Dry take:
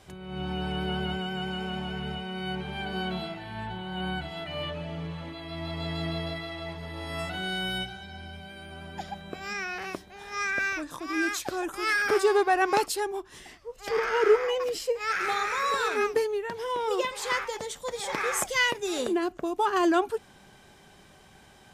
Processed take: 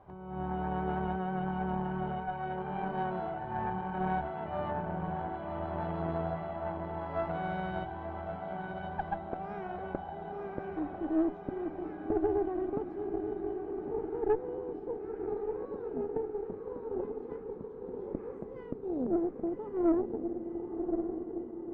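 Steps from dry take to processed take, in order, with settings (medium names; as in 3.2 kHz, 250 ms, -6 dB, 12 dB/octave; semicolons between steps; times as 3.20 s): low-pass sweep 930 Hz -> 270 Hz, 8.94–11.43 s; echo that smears into a reverb 1123 ms, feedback 62%, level -5 dB; valve stage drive 20 dB, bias 0.75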